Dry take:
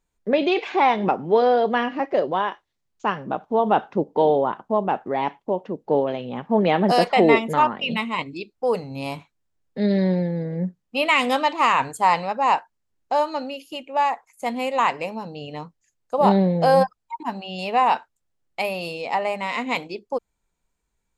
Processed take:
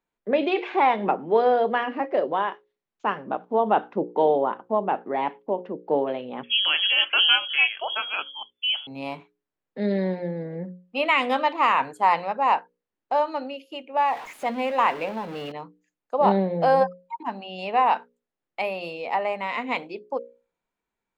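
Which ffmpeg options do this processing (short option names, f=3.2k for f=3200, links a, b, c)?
-filter_complex "[0:a]asettb=1/sr,asplit=3[a][b][c];[a]atrim=end=6.434[d];[b]atrim=start=6.43:end=8.87,asetpts=PTS-STARTPTS,afade=t=in:d=0.004:c=qsin,afade=t=out:st=2.436:d=0.004:c=qsin,lowpass=f=3k:t=q:w=0.5098,lowpass=f=3k:t=q:w=0.6013,lowpass=f=3k:t=q:w=0.9,lowpass=f=3k:t=q:w=2.563,afreqshift=-3500[e];[c]atrim=start=8.866[f];[d][e]acrossfade=d=0.004:c1=hsin:c2=qsin[g];[g][f]acrossfade=d=0.004:c1=qsin:c2=hsin,asettb=1/sr,asplit=3[h][i][j];[h]atrim=end=14.084[k];[i]atrim=start=14.08:end=15.52,asetpts=PTS-STARTPTS,afade=t=in:d=0.004:c=qsin,afade=t=out:st=1.436:d=0.004:c=qsin,aeval=exprs='val(0)+0.5*0.0316*sgn(val(0))':c=same[l];[j]atrim=start=15.516[m];[k][l]acrossfade=d=0.004:c1=hsin:c2=qsin[n];[n][m]acrossfade=d=0.004:c1=qsin:c2=hsin,acrossover=split=180 3600:gain=0.158 1 0.178[o][p][q];[o][p][q]amix=inputs=3:normalize=0,bandreject=f=60:t=h:w=6,bandreject=f=120:t=h:w=6,bandreject=f=180:t=h:w=6,bandreject=f=240:t=h:w=6,bandreject=f=300:t=h:w=6,bandreject=f=360:t=h:w=6,bandreject=f=420:t=h:w=6,bandreject=f=480:t=h:w=6,bandreject=f=540:t=h:w=6,volume=-1.5dB"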